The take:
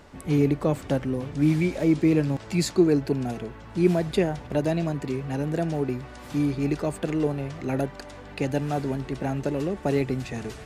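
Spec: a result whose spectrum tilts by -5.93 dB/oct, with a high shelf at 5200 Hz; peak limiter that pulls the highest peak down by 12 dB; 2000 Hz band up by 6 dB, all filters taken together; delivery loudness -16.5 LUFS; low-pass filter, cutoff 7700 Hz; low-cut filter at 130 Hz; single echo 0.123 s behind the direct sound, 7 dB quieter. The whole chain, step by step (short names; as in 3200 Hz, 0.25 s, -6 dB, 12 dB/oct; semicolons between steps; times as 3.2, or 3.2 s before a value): HPF 130 Hz; LPF 7700 Hz; bell 2000 Hz +8 dB; high shelf 5200 Hz -4 dB; limiter -20.5 dBFS; echo 0.123 s -7 dB; gain +13.5 dB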